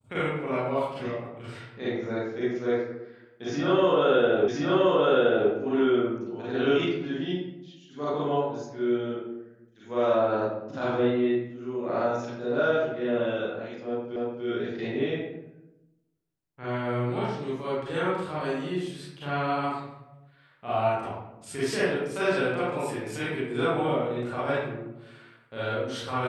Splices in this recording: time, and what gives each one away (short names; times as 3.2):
4.48 repeat of the last 1.02 s
14.16 repeat of the last 0.29 s